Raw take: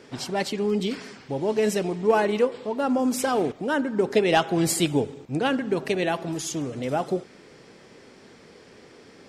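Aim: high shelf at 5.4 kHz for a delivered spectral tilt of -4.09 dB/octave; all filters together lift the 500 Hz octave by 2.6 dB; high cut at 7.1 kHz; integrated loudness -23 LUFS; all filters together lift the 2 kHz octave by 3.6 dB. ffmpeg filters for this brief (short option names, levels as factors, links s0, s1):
-af "lowpass=7100,equalizer=f=500:t=o:g=3,equalizer=f=2000:t=o:g=5,highshelf=f=5400:g=-3"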